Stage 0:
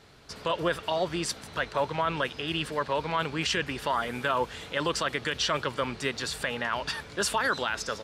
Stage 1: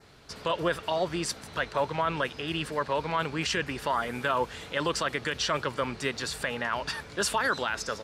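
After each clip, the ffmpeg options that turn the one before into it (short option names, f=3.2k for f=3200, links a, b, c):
-af "adynamicequalizer=threshold=0.00501:dfrequency=3300:dqfactor=2.5:tfrequency=3300:tqfactor=2.5:attack=5:release=100:ratio=0.375:range=2:mode=cutabove:tftype=bell"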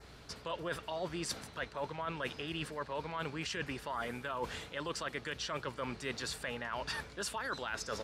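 -af "areverse,acompressor=threshold=-36dB:ratio=6,areverse,aeval=exprs='val(0)+0.00112*(sin(2*PI*60*n/s)+sin(2*PI*2*60*n/s)/2+sin(2*PI*3*60*n/s)/3+sin(2*PI*4*60*n/s)/4+sin(2*PI*5*60*n/s)/5)':c=same"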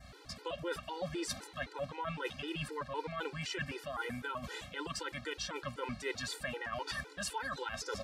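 -af "afftfilt=real='re*gt(sin(2*PI*3.9*pts/sr)*(1-2*mod(floor(b*sr/1024/260),2)),0)':imag='im*gt(sin(2*PI*3.9*pts/sr)*(1-2*mod(floor(b*sr/1024/260),2)),0)':win_size=1024:overlap=0.75,volume=3dB"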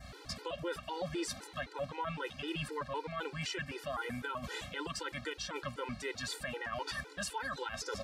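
-af "alimiter=level_in=8.5dB:limit=-24dB:level=0:latency=1:release=367,volume=-8.5dB,volume=4dB"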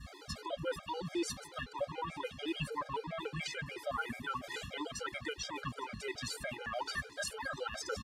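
-af "aecho=1:1:858:0.0891,afftfilt=real='re*gt(sin(2*PI*6.9*pts/sr)*(1-2*mod(floor(b*sr/1024/410),2)),0)':imag='im*gt(sin(2*PI*6.9*pts/sr)*(1-2*mod(floor(b*sr/1024/410),2)),0)':win_size=1024:overlap=0.75,volume=3dB"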